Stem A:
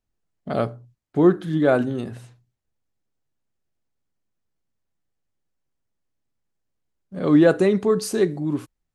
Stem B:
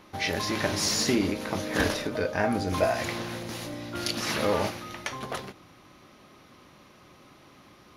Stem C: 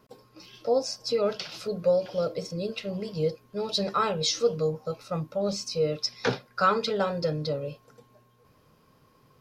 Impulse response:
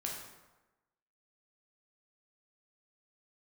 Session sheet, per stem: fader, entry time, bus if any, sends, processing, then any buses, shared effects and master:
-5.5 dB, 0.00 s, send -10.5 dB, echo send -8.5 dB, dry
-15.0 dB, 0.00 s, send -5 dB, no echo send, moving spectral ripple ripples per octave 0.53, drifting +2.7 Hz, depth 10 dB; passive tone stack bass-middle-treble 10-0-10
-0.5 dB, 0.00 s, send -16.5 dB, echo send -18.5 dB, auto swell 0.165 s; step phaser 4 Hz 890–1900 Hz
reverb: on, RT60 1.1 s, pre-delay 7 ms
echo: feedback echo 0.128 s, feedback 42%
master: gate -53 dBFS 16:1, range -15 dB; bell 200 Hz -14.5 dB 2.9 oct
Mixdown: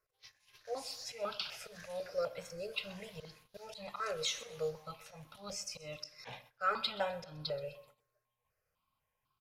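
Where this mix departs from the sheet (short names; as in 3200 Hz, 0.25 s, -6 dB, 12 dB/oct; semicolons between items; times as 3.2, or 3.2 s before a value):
stem A: muted; stem B -15.0 dB -> -25.5 dB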